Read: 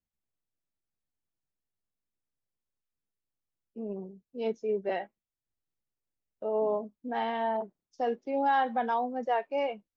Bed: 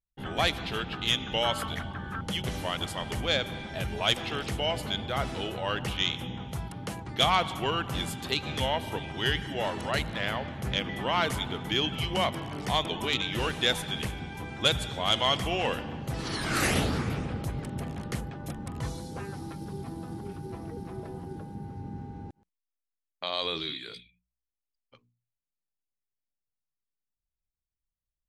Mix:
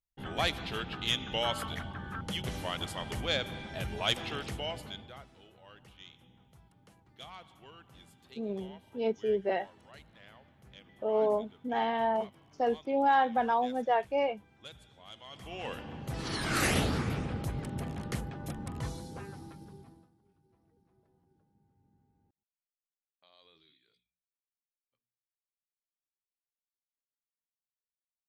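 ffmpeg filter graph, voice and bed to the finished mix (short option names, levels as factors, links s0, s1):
-filter_complex "[0:a]adelay=4600,volume=1.12[s0];[1:a]volume=8.41,afade=t=out:st=4.28:d=0.98:silence=0.0944061,afade=t=in:st=15.3:d=1.06:silence=0.0749894,afade=t=out:st=18.68:d=1.43:silence=0.0334965[s1];[s0][s1]amix=inputs=2:normalize=0"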